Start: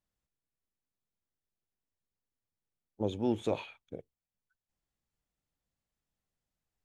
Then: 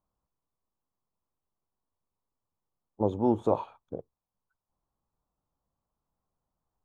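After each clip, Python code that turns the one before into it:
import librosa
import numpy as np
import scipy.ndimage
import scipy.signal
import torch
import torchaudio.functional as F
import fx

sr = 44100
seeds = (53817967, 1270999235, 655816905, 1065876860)

y = fx.high_shelf_res(x, sr, hz=1500.0, db=-12.0, q=3.0)
y = F.gain(torch.from_numpy(y), 4.5).numpy()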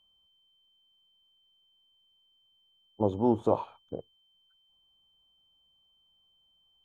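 y = x + 10.0 ** (-66.0 / 20.0) * np.sin(2.0 * np.pi * 3100.0 * np.arange(len(x)) / sr)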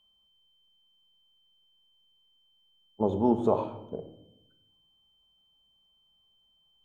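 y = fx.room_shoebox(x, sr, seeds[0], volume_m3=2700.0, walls='furnished', distance_m=1.4)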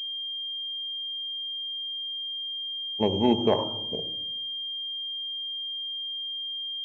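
y = fx.pwm(x, sr, carrier_hz=3200.0)
y = F.gain(torch.from_numpy(y), 2.0).numpy()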